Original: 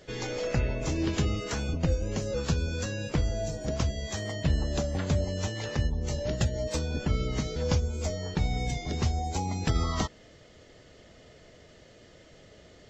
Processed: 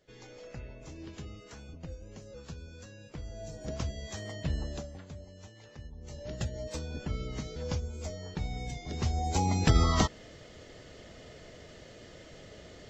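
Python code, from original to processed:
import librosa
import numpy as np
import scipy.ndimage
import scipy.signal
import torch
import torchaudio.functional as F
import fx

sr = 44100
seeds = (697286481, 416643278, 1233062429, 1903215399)

y = fx.gain(x, sr, db=fx.line((3.12, -16.5), (3.67, -6.5), (4.66, -6.5), (5.08, -19.0), (5.83, -19.0), (6.4, -7.5), (8.82, -7.5), (9.44, 3.5)))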